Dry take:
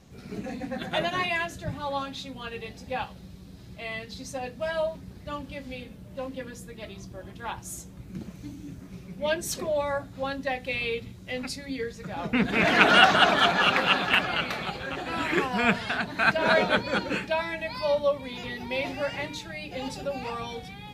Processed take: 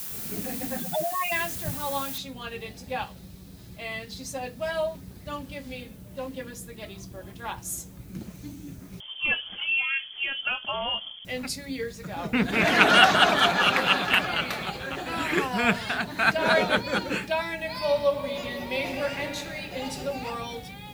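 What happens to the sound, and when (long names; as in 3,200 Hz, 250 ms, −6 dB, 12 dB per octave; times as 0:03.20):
0:00.80–0:01.32: expanding power law on the bin magnitudes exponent 4
0:02.18: noise floor change −44 dB −69 dB
0:09.00–0:11.25: voice inversion scrambler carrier 3,300 Hz
0:17.54–0:19.99: thrown reverb, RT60 2.9 s, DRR 6 dB
whole clip: high-shelf EQ 8,700 Hz +11.5 dB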